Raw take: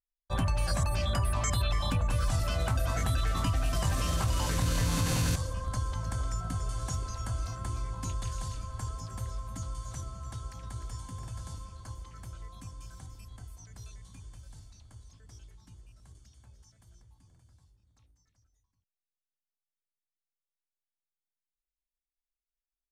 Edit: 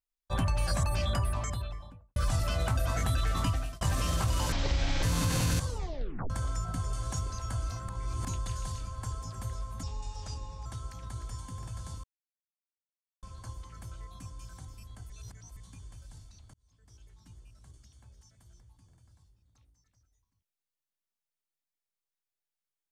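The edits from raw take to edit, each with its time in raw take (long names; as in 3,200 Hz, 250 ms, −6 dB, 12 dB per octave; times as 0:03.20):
0:01.01–0:02.16: fade out and dull
0:03.49–0:03.81: fade out
0:04.52–0:04.79: play speed 53%
0:05.43: tape stop 0.63 s
0:07.65–0:08.01: reverse
0:09.59–0:10.26: play speed 81%
0:11.64: splice in silence 1.19 s
0:13.51–0:13.98: reverse
0:14.95–0:15.73: fade in linear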